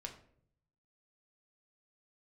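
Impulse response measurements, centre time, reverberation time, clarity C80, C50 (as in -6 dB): 15 ms, 0.60 s, 13.5 dB, 10.0 dB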